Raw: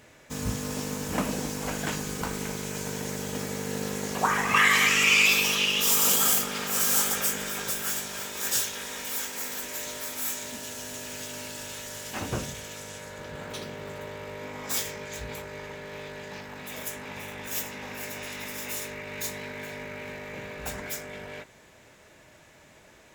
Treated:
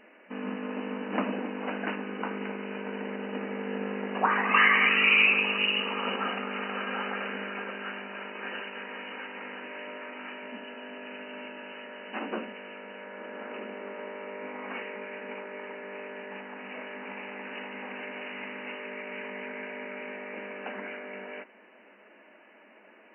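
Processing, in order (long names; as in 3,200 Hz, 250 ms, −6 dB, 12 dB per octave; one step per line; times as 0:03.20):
brick-wall band-pass 190–3,000 Hz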